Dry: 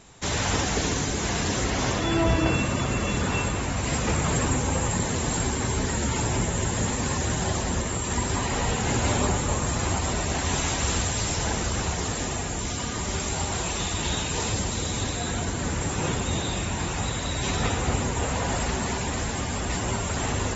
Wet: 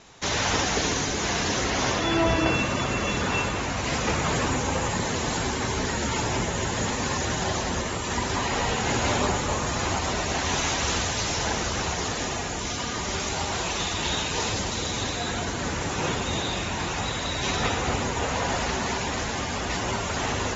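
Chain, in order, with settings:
Butterworth low-pass 6,900 Hz 96 dB per octave
low-shelf EQ 260 Hz −8 dB
level +3 dB

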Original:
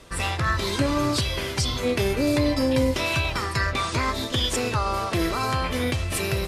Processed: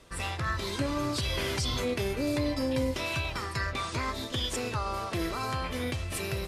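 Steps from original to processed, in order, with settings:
0:01.23–0:01.94: envelope flattener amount 70%
level −7.5 dB

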